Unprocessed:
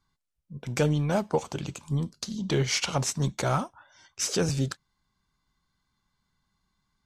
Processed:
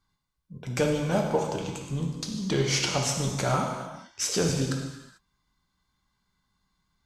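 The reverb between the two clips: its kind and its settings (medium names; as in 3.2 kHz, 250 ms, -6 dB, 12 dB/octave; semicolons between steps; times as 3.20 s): gated-style reverb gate 470 ms falling, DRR 1 dB; trim -1 dB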